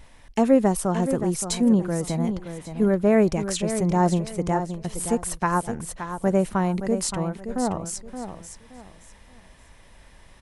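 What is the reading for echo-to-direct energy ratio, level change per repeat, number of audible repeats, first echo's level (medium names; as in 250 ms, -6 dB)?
-9.0 dB, -11.5 dB, 3, -9.5 dB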